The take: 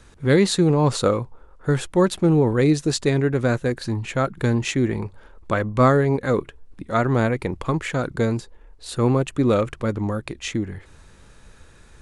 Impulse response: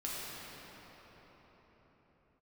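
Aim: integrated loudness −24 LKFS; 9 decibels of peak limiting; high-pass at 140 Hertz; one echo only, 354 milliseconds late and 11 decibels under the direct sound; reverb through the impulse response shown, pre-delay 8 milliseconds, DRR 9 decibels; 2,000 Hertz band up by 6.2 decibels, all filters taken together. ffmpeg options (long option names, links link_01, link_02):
-filter_complex "[0:a]highpass=140,equalizer=frequency=2000:width_type=o:gain=8,alimiter=limit=-9dB:level=0:latency=1,aecho=1:1:354:0.282,asplit=2[link_01][link_02];[1:a]atrim=start_sample=2205,adelay=8[link_03];[link_02][link_03]afir=irnorm=-1:irlink=0,volume=-12.5dB[link_04];[link_01][link_04]amix=inputs=2:normalize=0,volume=-2dB"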